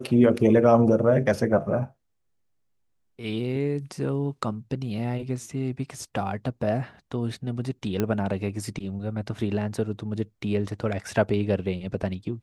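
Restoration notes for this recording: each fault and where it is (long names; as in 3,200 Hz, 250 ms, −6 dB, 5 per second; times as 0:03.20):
0:08.00: click −12 dBFS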